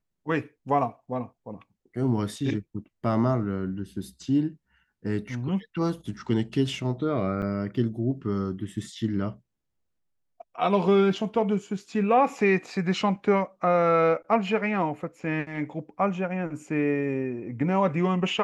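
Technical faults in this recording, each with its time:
0:07.42–0:07.43: drop-out 7.3 ms

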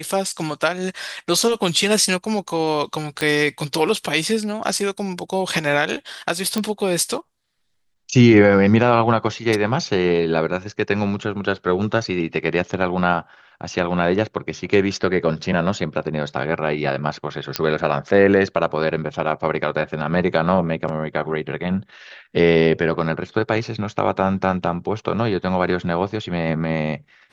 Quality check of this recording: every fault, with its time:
0:03.21: click −8 dBFS
0:06.58: click −8 dBFS
0:17.56: click −3 dBFS

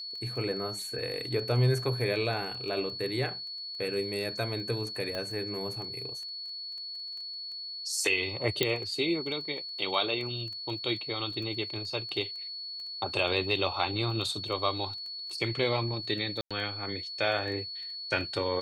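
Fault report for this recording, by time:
surface crackle 10 per second −38 dBFS
whistle 4,400 Hz −37 dBFS
0:05.15: click −22 dBFS
0:08.63: click −10 dBFS
0:16.41–0:16.51: drop-out 96 ms

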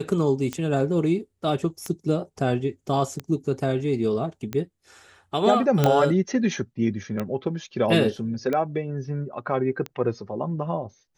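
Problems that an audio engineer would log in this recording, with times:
scratch tick 45 rpm −15 dBFS
0:05.84: click −6 dBFS

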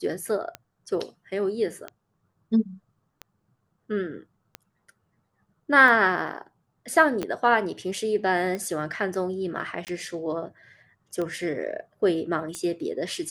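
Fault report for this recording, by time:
scratch tick 45 rpm −19 dBFS
0:07.23: click −15 dBFS
0:09.85–0:09.87: drop-out 18 ms

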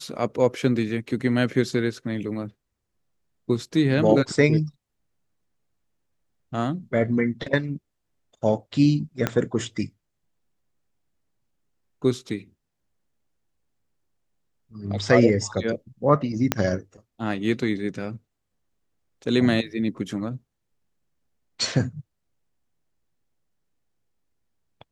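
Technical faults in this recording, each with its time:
0:09.27: click −8 dBFS
0:16.52: click −4 dBFS

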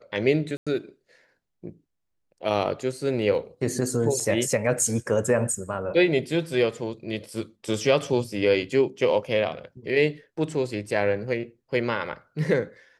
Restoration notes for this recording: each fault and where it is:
0:00.57–0:00.67: drop-out 96 ms
0:04.20: drop-out 4.9 ms

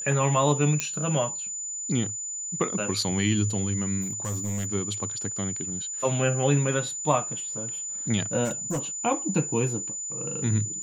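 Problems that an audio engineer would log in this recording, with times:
whistle 7,000 Hz −31 dBFS
0:00.80: click −10 dBFS
0:04.01–0:04.66: clipping −26 dBFS
0:08.44–0:08.79: clipping −24 dBFS

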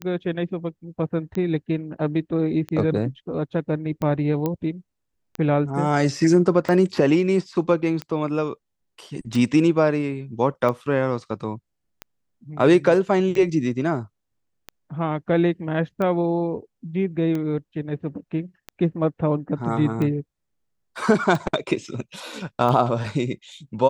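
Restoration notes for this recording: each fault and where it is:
scratch tick 45 rpm −16 dBFS
0:04.46: click −12 dBFS

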